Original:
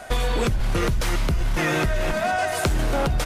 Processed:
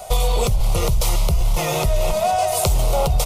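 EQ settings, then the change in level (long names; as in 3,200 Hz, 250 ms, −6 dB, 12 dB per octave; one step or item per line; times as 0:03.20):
high-shelf EQ 11,000 Hz +11.5 dB
phaser with its sweep stopped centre 680 Hz, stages 4
+5.5 dB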